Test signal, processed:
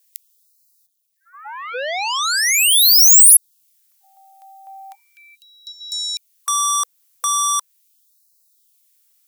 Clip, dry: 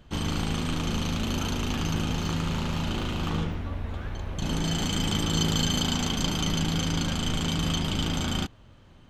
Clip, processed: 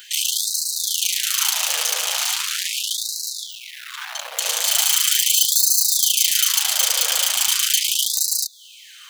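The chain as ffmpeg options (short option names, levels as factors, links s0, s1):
-filter_complex "[0:a]asplit=2[s0][s1];[s1]acompressor=threshold=0.02:ratio=12,volume=0.75[s2];[s0][s2]amix=inputs=2:normalize=0,asoftclip=type=tanh:threshold=0.0841,aeval=exprs='0.0841*(cos(1*acos(clip(val(0)/0.0841,-1,1)))-cos(1*PI/2))+0.00376*(cos(3*acos(clip(val(0)/0.0841,-1,1)))-cos(3*PI/2))+0.0237*(cos(5*acos(clip(val(0)/0.0841,-1,1)))-cos(5*PI/2))':c=same,crystalizer=i=6.5:c=0,afftfilt=real='re*gte(b*sr/1024,430*pow(3900/430,0.5+0.5*sin(2*PI*0.39*pts/sr)))':imag='im*gte(b*sr/1024,430*pow(3900/430,0.5+0.5*sin(2*PI*0.39*pts/sr)))':win_size=1024:overlap=0.75,volume=1.12"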